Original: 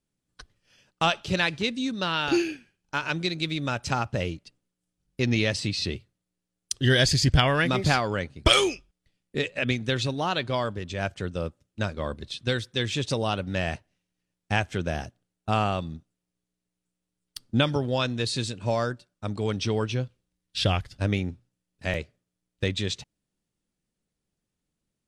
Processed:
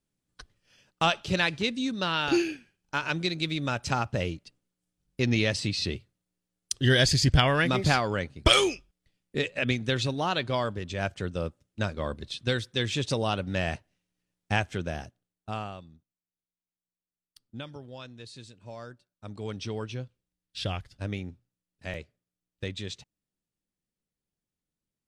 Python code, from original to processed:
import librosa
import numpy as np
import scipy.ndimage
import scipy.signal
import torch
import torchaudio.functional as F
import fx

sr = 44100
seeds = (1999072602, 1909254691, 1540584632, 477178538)

y = fx.gain(x, sr, db=fx.line((14.52, -1.0), (15.56, -10.0), (15.92, -17.5), (18.68, -17.5), (19.47, -8.0)))